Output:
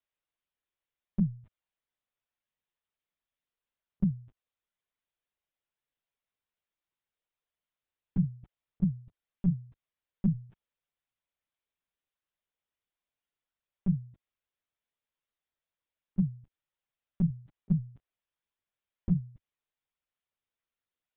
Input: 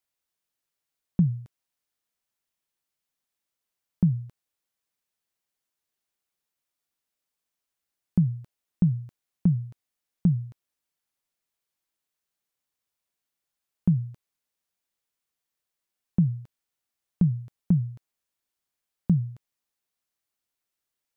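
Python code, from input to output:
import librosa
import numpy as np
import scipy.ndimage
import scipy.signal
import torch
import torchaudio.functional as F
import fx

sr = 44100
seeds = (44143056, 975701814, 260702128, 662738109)

y = fx.peak_eq(x, sr, hz=110.0, db=-11.5, octaves=0.43)
y = fx.lpc_vocoder(y, sr, seeds[0], excitation='pitch_kept', order=16)
y = y * librosa.db_to_amplitude(-4.0)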